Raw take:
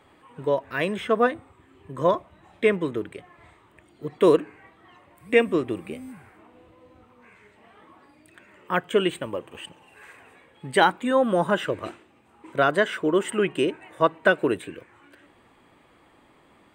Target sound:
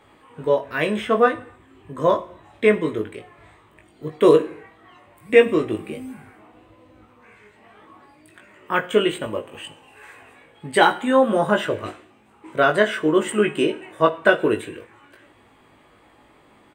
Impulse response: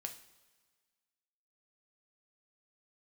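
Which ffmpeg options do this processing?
-filter_complex "[0:a]asplit=2[a][b];[b]adelay=19,volume=-4dB[c];[a][c]amix=inputs=2:normalize=0,asplit=2[d][e];[1:a]atrim=start_sample=2205,afade=t=out:st=0.34:d=0.01,atrim=end_sample=15435[f];[e][f]afir=irnorm=-1:irlink=0,volume=2.5dB[g];[d][g]amix=inputs=2:normalize=0,volume=-3.5dB"

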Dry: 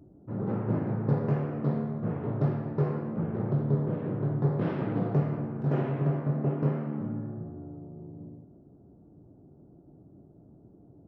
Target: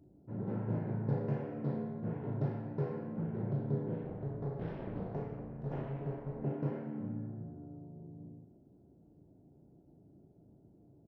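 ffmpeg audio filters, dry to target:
-filter_complex "[0:a]bandreject=f=1.2k:w=5.2,asettb=1/sr,asplit=3[a][b][c];[a]atrim=end=4.034[d];[b]atrim=start=4.03:end=6.42,asetpts=PTS-STARTPTS,afade=t=in:d=0.004:c=qsin,afade=t=out:st=2.386:d=0.004:c=qsin,tremolo=f=280:d=0.919[e];[c]atrim=start=6.416[f];[d][e]acrossfade=d=0.004:c1=hsin:c2=qsin[g];[g][f]acrossfade=d=0.004:c1=qsin:c2=hsin,asplit=2[h][i];[i]adelay=37,volume=-6.5dB[j];[h][j]amix=inputs=2:normalize=0,volume=-8dB"

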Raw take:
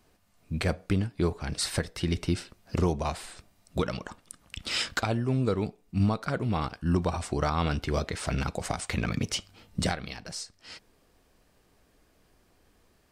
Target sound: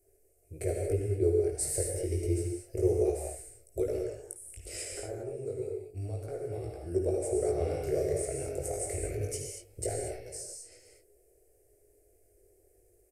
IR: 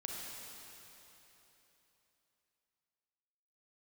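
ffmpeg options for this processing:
-filter_complex "[0:a]firequalizer=gain_entry='entry(100,0);entry(200,-30);entry(370,9);entry(690,-1);entry(980,-29);entry(1400,-19);entry(2100,-9);entry(3500,-25);entry(5000,-10);entry(8600,8)':delay=0.05:min_phase=1,asettb=1/sr,asplit=3[a][b][c];[a]atrim=end=4.854[d];[b]atrim=start=4.85:end=6.81,asetpts=PTS-STARTPTS,afade=t=in:d=0.004:c=qsin,afade=t=out:st=1.956:d=0.004:c=qsin,acrossover=split=630|1600[e][f][g];[e]acompressor=threshold=-34dB:ratio=4[h];[f]acompressor=threshold=-44dB:ratio=4[i];[g]acompressor=threshold=-54dB:ratio=4[j];[h][i][j]amix=inputs=3:normalize=0[k];[c]atrim=start=6.806[l];[d][k]acrossfade=d=0.004:c1=hsin:c2=qsin[m];[m][l]acrossfade=d=0.004:c1=qsin:c2=hsin,flanger=delay=18:depth=3.8:speed=0.29,asettb=1/sr,asplit=3[n][o][p];[n]atrim=end=7.574[q];[o]atrim=start=7.57:end=8.14,asetpts=PTS-STARTPTS,afade=t=in:d=0.004:c=qsin,afade=t=out:st=0.566:d=0.004:c=qsin,asplit=2[r][s];[s]adelay=35,volume=-2dB[t];[r][t]amix=inputs=2:normalize=0,atrim=end_sample=25137[u];[p]atrim=start=8.136[v];[q][u]acrossfade=d=0.004:c1=hsin:c2=qsin[w];[w][v]acrossfade=d=0.004:c1=qsin:c2=hsin[x];[1:a]atrim=start_sample=2205,afade=t=out:st=0.2:d=0.01,atrim=end_sample=9261,asetrate=27783,aresample=44100[y];[x][y]afir=irnorm=-1:irlink=0"

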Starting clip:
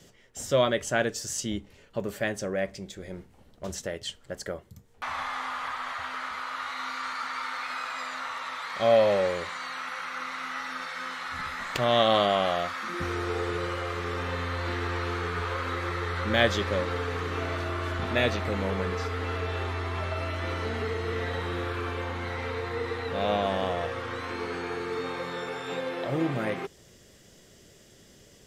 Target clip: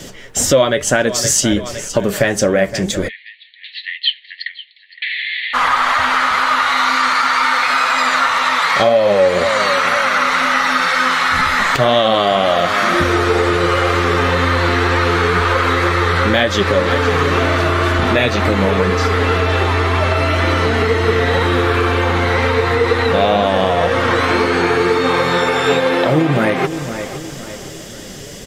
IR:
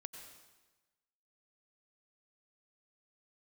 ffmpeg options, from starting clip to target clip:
-filter_complex "[0:a]aecho=1:1:514|1028|1542:0.133|0.056|0.0235,acompressor=threshold=-33dB:ratio=6,asplit=3[a][b][c];[a]afade=t=out:st=3.07:d=0.02[d];[b]asuperpass=centerf=2800:order=20:qfactor=1.1,afade=t=in:st=3.07:d=0.02,afade=t=out:st=5.53:d=0.02[e];[c]afade=t=in:st=5.53:d=0.02[f];[d][e][f]amix=inputs=3:normalize=0,flanger=delay=3.2:depth=4.1:regen=56:speed=2:shape=sinusoidal,alimiter=level_in=27.5dB:limit=-1dB:release=50:level=0:latency=1,volume=-1dB"

